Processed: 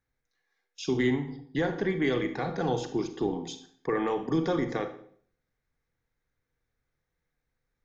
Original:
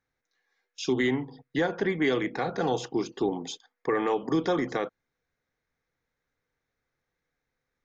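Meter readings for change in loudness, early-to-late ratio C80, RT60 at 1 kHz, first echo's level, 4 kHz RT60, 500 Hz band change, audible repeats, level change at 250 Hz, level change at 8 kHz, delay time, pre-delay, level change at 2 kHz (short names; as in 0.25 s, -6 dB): -1.5 dB, 14.5 dB, 0.55 s, none, 0.50 s, -1.5 dB, none, -0.5 dB, n/a, none, 34 ms, -3.0 dB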